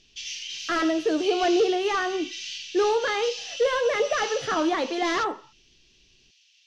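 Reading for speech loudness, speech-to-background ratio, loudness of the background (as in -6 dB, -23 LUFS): -25.0 LUFS, 10.0 dB, -35.0 LUFS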